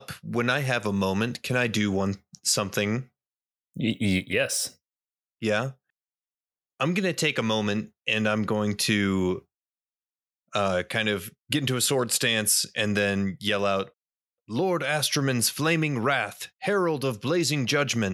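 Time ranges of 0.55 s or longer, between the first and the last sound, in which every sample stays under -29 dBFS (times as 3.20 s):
3.00–3.77 s
4.67–5.43 s
5.69–6.81 s
9.38–10.54 s
13.83–14.52 s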